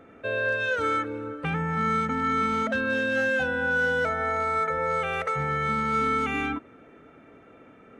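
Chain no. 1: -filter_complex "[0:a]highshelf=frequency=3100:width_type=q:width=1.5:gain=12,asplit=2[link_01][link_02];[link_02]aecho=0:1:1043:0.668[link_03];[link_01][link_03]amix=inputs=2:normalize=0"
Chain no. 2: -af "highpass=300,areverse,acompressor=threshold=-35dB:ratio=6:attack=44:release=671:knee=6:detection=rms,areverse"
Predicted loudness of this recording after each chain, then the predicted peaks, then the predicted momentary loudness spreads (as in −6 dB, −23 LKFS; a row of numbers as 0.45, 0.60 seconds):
−25.5, −36.5 LKFS; −13.5, −25.5 dBFS; 6, 17 LU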